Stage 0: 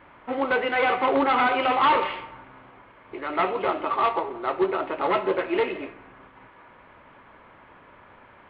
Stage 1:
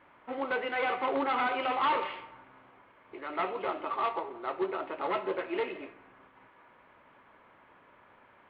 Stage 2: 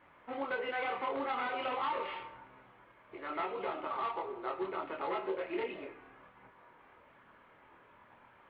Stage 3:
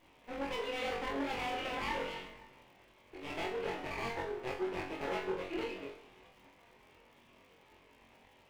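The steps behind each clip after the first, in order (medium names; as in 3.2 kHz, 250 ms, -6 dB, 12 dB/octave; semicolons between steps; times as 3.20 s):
bass shelf 110 Hz -9 dB; trim -8 dB
chorus voices 4, 0.6 Hz, delay 25 ms, depth 1.3 ms; compression 4:1, threshold -34 dBFS, peak gain reduction 8.5 dB; trim +1.5 dB
comb filter that takes the minimum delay 0.35 ms; flutter echo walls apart 3.7 m, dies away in 0.35 s; crackle 160 per s -56 dBFS; trim -2 dB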